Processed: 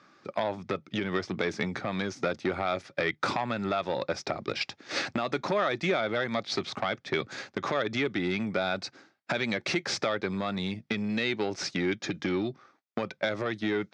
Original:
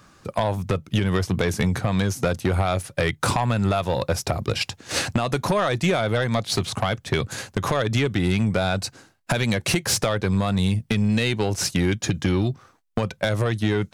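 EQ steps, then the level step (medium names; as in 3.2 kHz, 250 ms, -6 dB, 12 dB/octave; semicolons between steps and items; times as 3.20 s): cabinet simulation 330–4600 Hz, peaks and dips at 480 Hz -7 dB, 710 Hz -5 dB, 1 kHz -8 dB, 1.6 kHz -4 dB, 2.9 kHz -9 dB, 4.1 kHz -5 dB; 0.0 dB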